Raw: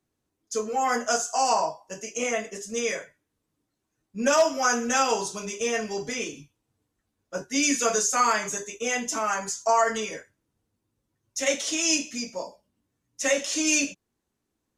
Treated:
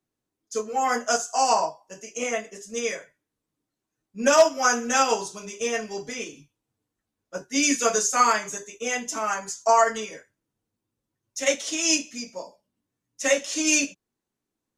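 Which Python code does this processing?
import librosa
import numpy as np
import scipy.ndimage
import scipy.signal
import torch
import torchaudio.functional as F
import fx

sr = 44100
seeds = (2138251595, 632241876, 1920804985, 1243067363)

y = fx.peak_eq(x, sr, hz=65.0, db=-13.0, octaves=0.57)
y = fx.upward_expand(y, sr, threshold_db=-34.0, expansion=1.5)
y = F.gain(torch.from_numpy(y), 5.0).numpy()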